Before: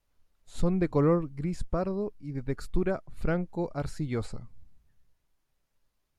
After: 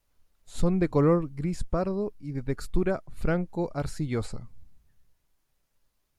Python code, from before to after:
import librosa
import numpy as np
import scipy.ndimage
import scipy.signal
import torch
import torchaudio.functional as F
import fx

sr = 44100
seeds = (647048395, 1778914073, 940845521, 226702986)

y = fx.high_shelf(x, sr, hz=6200.0, db=4.5)
y = y * librosa.db_to_amplitude(2.0)